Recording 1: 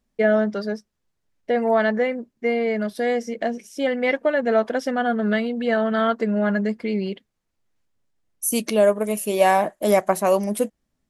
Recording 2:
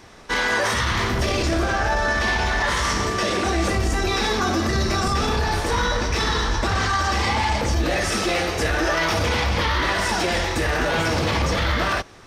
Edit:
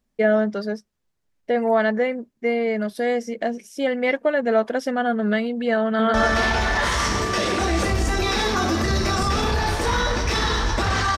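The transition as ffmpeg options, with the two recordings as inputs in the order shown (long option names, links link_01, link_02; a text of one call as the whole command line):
ffmpeg -i cue0.wav -i cue1.wav -filter_complex "[0:a]apad=whole_dur=11.17,atrim=end=11.17,atrim=end=6.142[link_01];[1:a]atrim=start=1.988:end=7.02[link_02];[link_01][link_02]acrossfade=duration=0.004:curve1=hsin:curve2=hsin,asplit=2[link_03][link_04];[link_04]afade=type=in:start_time=5.84:duration=0.01,afade=type=out:start_time=6.14:duration=0.01,aecho=0:1:150|300|450|600|750|900|1050|1200|1350|1500|1650:0.841395|0.546907|0.355489|0.231068|0.150194|0.0976263|0.0634571|0.0412471|0.0268106|0.0174269|0.0113275[link_05];[link_03][link_05]amix=inputs=2:normalize=0" out.wav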